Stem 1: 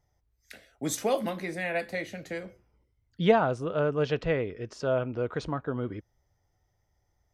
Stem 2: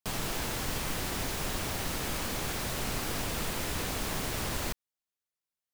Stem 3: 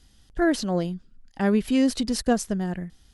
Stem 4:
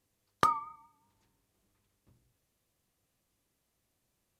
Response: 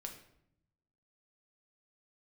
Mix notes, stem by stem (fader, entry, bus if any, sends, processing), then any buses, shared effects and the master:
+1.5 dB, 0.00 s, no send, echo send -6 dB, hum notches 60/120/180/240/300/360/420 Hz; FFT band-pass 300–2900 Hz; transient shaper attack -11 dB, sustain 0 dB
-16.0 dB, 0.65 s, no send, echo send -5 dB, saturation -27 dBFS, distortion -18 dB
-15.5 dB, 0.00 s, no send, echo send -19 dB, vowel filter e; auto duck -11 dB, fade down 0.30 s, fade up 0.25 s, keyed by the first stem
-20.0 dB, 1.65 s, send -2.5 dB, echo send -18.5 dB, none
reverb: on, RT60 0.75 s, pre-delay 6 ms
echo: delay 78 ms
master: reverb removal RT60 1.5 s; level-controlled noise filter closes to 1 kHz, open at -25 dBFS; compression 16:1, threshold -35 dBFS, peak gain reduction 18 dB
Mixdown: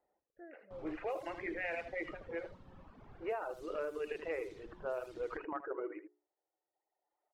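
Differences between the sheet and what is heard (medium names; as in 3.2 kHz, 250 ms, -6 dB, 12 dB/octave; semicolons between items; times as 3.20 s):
stem 3 -15.5 dB -> -7.0 dB; stem 4 -20.0 dB -> -30.5 dB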